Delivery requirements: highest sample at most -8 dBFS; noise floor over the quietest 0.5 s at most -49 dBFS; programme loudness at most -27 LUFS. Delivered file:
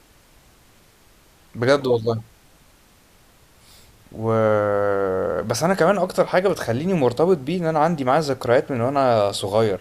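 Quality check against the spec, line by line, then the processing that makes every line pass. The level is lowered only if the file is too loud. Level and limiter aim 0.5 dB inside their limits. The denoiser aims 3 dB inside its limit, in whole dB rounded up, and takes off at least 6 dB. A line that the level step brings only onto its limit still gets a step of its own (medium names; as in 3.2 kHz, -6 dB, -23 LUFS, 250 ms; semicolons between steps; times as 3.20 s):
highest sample -6.0 dBFS: fail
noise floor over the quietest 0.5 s -54 dBFS: pass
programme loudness -20.5 LUFS: fail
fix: trim -7 dB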